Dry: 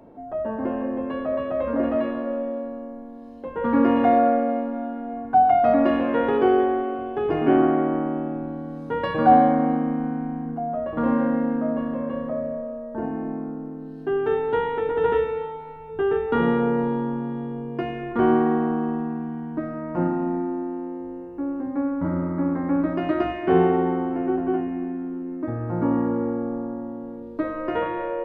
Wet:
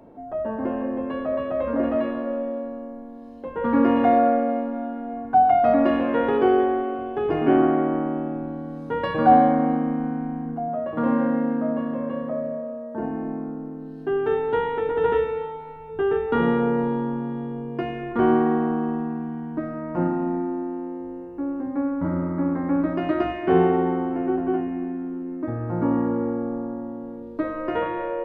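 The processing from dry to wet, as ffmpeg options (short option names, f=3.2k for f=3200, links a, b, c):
-filter_complex "[0:a]asettb=1/sr,asplit=3[a][b][c];[a]atrim=end=10.684[d];[b]atrim=start=10.68:end=13,asetpts=PTS-STARTPTS,afade=t=in:d=0.004:c=qsin,afade=t=out:st=2.316:d=0.004:c=qsin,highpass=f=89:w=0.5412,highpass=f=89:w=1.3066[e];[c]atrim=start=12.996[f];[d][e]acrossfade=d=0.004:c1=hsin:c2=qsin[g];[g][f]acrossfade=d=0.004:c1=qsin:c2=hsin"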